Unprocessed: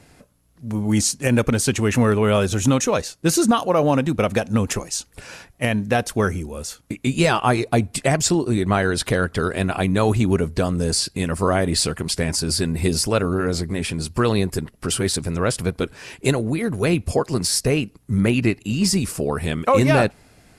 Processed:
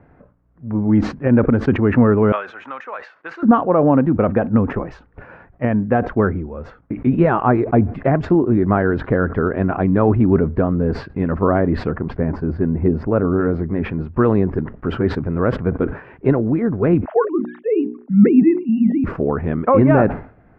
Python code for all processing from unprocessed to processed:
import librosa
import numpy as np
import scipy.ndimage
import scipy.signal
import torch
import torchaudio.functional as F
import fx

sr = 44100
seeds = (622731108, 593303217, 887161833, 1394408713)

y = fx.chain(x, sr, fx.highpass(hz=1300.0, slope=12),
    fx.band_squash(depth_pct=70), at=(2.32, 3.43))
y = fx.chain(y, sr, fx.lowpass(hz=7700.0, slope=12),
    fx.peak_eq(hz=4600.0, db=-9.0, octaves=2.9), at=(11.91, 13.25))
y = fx.chain(y, sr, fx.sine_speech(),
    fx.hum_notches(base_hz=60, count=7), at=(17.05, 19.04))
y = scipy.signal.sosfilt(scipy.signal.butter(4, 1600.0, 'lowpass', fs=sr, output='sos'), y)
y = fx.dynamic_eq(y, sr, hz=280.0, q=1.3, threshold_db=-30.0, ratio=4.0, max_db=5)
y = fx.sustainer(y, sr, db_per_s=130.0)
y = y * librosa.db_to_amplitude(1.5)